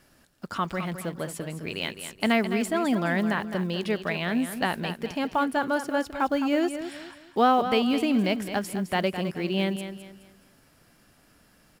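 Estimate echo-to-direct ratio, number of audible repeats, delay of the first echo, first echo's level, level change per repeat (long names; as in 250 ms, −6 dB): −9.5 dB, 3, 211 ms, −10.0 dB, −9.5 dB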